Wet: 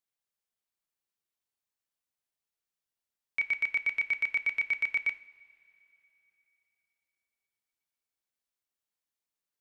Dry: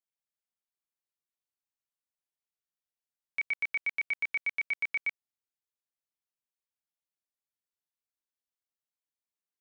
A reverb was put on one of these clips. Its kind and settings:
coupled-rooms reverb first 0.47 s, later 3.4 s, from −18 dB, DRR 11 dB
level +2 dB

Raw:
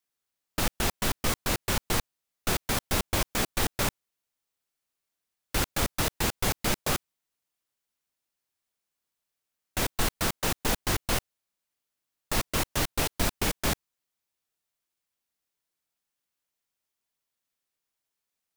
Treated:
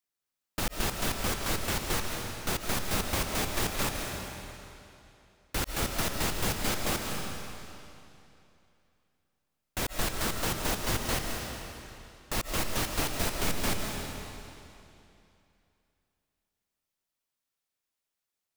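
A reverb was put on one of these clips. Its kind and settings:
comb and all-pass reverb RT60 2.8 s, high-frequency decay 0.95×, pre-delay 105 ms, DRR 1.5 dB
level −4 dB

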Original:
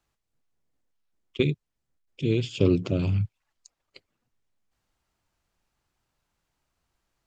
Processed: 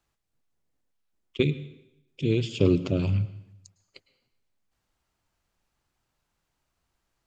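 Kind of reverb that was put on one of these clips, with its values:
dense smooth reverb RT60 0.81 s, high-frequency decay 1×, pre-delay 95 ms, DRR 16 dB

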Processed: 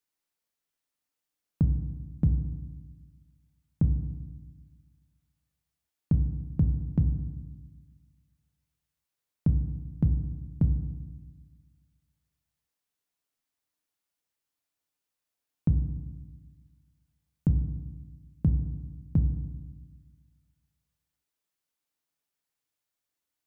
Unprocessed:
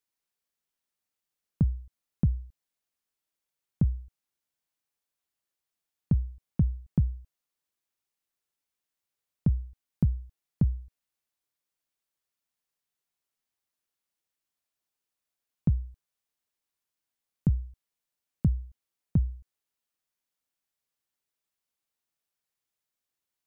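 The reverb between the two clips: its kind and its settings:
feedback delay network reverb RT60 1.2 s, low-frequency decay 1.45×, high-frequency decay 0.3×, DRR 7.5 dB

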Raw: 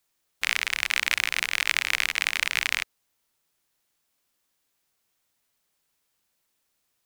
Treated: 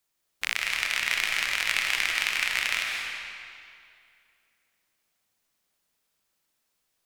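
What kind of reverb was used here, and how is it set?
comb and all-pass reverb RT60 2.4 s, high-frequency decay 0.85×, pre-delay 110 ms, DRR 0 dB
level −3.5 dB

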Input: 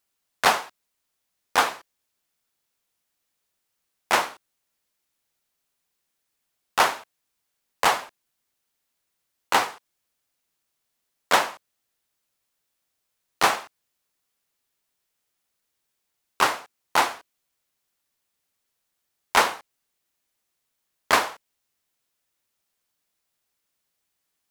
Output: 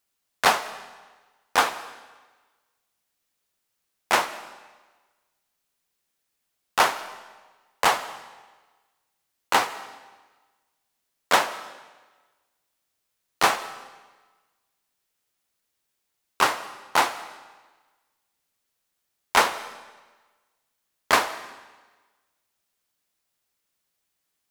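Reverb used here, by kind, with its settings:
comb and all-pass reverb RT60 1.3 s, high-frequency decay 0.95×, pre-delay 115 ms, DRR 16.5 dB

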